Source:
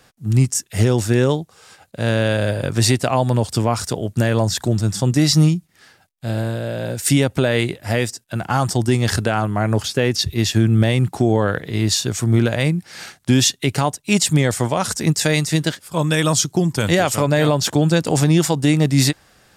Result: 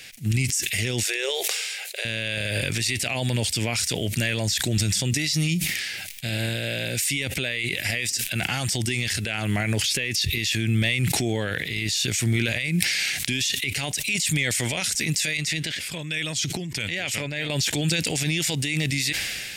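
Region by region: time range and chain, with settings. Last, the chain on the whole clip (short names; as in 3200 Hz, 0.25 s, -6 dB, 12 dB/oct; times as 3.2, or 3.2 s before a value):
1.03–2.05 brick-wall FIR high-pass 360 Hz + sustainer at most 120 dB/s
15.37–17.5 LPF 3200 Hz 6 dB/oct + compressor 5:1, threshold -31 dBFS
whole clip: resonant high shelf 1600 Hz +12 dB, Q 3; maximiser +14 dB; sustainer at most 26 dB/s; gain -14.5 dB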